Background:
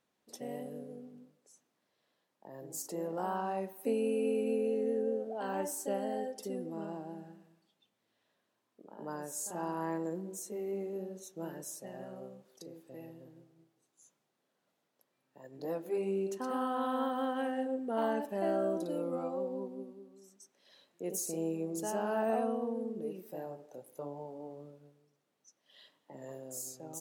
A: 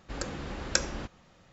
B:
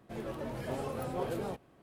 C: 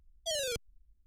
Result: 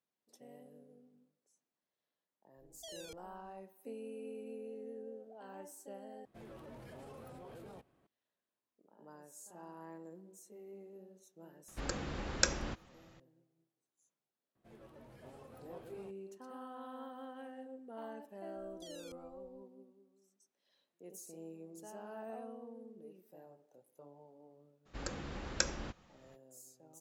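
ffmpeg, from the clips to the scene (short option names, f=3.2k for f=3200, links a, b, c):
-filter_complex "[3:a]asplit=2[a][b];[2:a]asplit=2[c][d];[1:a]asplit=2[e][f];[0:a]volume=-14.5dB[g];[a]acompressor=threshold=-37dB:ratio=6:attack=3.2:release=140:knee=1:detection=peak[h];[c]alimiter=level_in=9dB:limit=-24dB:level=0:latency=1:release=25,volume=-9dB[i];[b]acompressor=threshold=-44dB:ratio=6:attack=3.2:release=140:knee=1:detection=peak[j];[g]asplit=2[k][l];[k]atrim=end=6.254[m];[i]atrim=end=1.82,asetpts=PTS-STARTPTS,volume=-11dB[n];[l]atrim=start=8.066[o];[h]atrim=end=1.06,asetpts=PTS-STARTPTS,volume=-9.5dB,afade=t=in:d=0.004:c=hsin,afade=t=out:st=1.056:d=0.004:c=hsin,adelay=2570[p];[e]atrim=end=1.52,asetpts=PTS-STARTPTS,volume=-3dB,afade=t=in:d=0.004:c=hsin,afade=t=out:st=1.516:d=0.004:c=hsin,adelay=11680[q];[d]atrim=end=1.82,asetpts=PTS-STARTPTS,volume=-18dB,afade=t=in:d=0.004:c=hsin,afade=t=out:st=1.816:d=0.004:c=hsin,adelay=14550[r];[j]atrim=end=1.06,asetpts=PTS-STARTPTS,volume=-7dB,afade=t=in:d=0.004:c=hsin,afade=t=out:st=1.056:d=0.004:c=hsin,adelay=18560[s];[f]atrim=end=1.52,asetpts=PTS-STARTPTS,volume=-6dB,afade=t=in:d=0.02,afade=t=out:st=1.5:d=0.02,adelay=24850[t];[m][n]acrossfade=d=0.004:c1=hsin:c2=hsin[u];[u][o]acrossfade=d=0.004:c1=hsin:c2=hsin[v];[v][p][q][r][s][t]amix=inputs=6:normalize=0"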